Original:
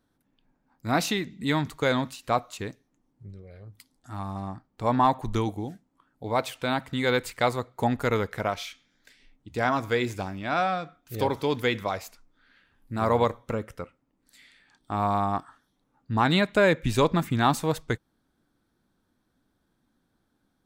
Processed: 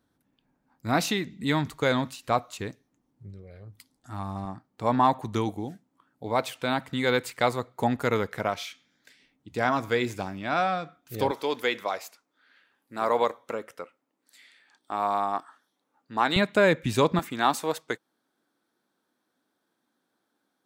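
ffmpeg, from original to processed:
-af "asetnsamples=n=441:p=0,asendcmd='4.45 highpass f 110;11.31 highpass f 370;16.36 highpass f 110;17.19 highpass f 340',highpass=49"

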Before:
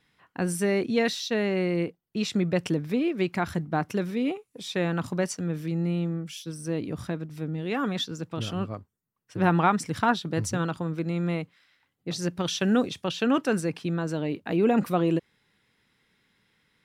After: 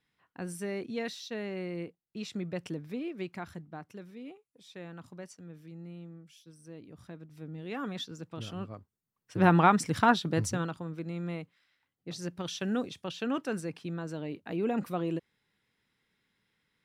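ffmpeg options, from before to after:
-af "volume=7dB,afade=t=out:st=3.19:d=0.63:silence=0.446684,afade=t=in:st=6.93:d=0.86:silence=0.334965,afade=t=in:st=8.75:d=0.68:silence=0.375837,afade=t=out:st=10.28:d=0.48:silence=0.375837"

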